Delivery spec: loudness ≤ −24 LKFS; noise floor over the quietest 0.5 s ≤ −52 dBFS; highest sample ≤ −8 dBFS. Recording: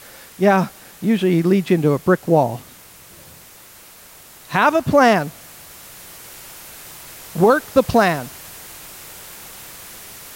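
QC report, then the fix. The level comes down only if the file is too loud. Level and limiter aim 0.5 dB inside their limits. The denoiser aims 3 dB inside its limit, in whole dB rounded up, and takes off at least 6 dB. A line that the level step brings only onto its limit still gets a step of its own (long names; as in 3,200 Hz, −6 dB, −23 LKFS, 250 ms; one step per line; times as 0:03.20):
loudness −17.0 LKFS: out of spec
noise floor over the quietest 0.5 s −44 dBFS: out of spec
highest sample −3.0 dBFS: out of spec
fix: broadband denoise 6 dB, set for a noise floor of −44 dBFS
level −7.5 dB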